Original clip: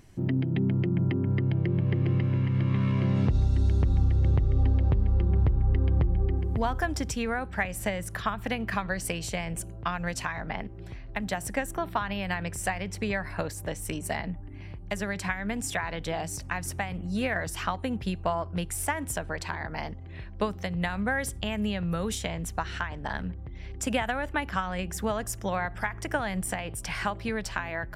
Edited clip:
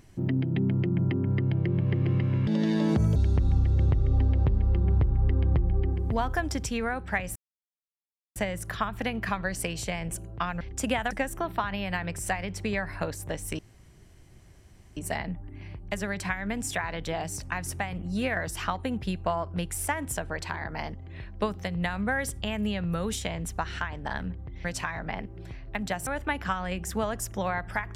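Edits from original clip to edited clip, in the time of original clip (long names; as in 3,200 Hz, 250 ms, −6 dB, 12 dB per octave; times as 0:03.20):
0:02.47–0:03.61: play speed 166%
0:07.81: splice in silence 1.00 s
0:10.06–0:11.48: swap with 0:23.64–0:24.14
0:13.96: splice in room tone 1.38 s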